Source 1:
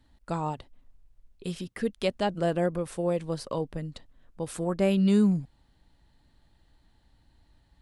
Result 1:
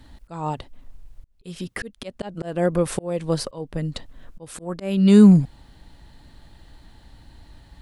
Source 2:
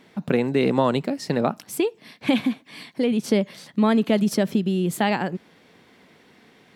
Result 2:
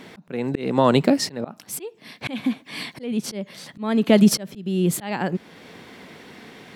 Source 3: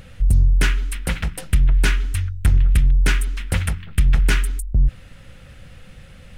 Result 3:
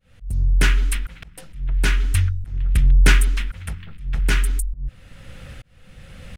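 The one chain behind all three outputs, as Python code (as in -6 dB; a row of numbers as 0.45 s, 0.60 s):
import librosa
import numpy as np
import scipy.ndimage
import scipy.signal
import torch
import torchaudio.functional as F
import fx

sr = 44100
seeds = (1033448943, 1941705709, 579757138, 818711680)

y = fx.auto_swell(x, sr, attack_ms=673.0)
y = y * 10.0 ** (-3 / 20.0) / np.max(np.abs(y))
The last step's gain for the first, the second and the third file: +15.5 dB, +10.5 dB, +4.5 dB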